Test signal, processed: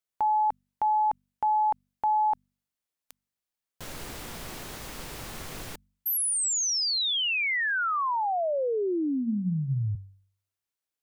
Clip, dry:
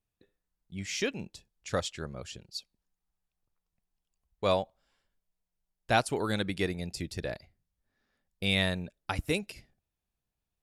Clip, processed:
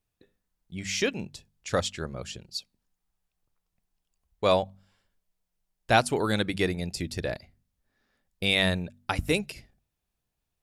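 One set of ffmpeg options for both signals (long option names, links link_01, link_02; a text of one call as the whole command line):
ffmpeg -i in.wav -af "bandreject=frequency=48.59:width_type=h:width=4,bandreject=frequency=97.18:width_type=h:width=4,bandreject=frequency=145.77:width_type=h:width=4,bandreject=frequency=194.36:width_type=h:width=4,bandreject=frequency=242.95:width_type=h:width=4,volume=4.5dB" out.wav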